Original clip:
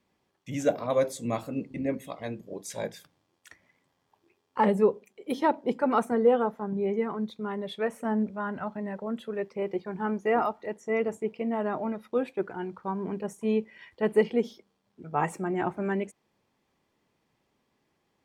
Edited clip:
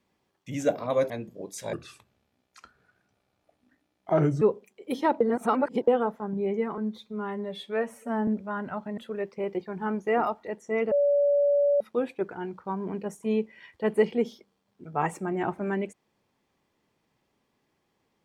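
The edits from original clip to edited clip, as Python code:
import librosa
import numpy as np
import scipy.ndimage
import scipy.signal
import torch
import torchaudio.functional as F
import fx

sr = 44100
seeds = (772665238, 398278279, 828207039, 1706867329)

y = fx.edit(x, sr, fx.cut(start_s=1.1, length_s=1.12),
    fx.speed_span(start_s=2.85, length_s=1.96, speed=0.73),
    fx.reverse_span(start_s=5.6, length_s=0.67),
    fx.stretch_span(start_s=7.17, length_s=1.0, factor=1.5),
    fx.cut(start_s=8.87, length_s=0.29),
    fx.bleep(start_s=11.1, length_s=0.89, hz=573.0, db=-19.0), tone=tone)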